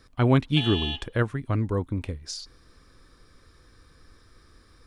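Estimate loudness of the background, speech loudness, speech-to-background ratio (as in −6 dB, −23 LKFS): −31.5 LKFS, −26.5 LKFS, 5.0 dB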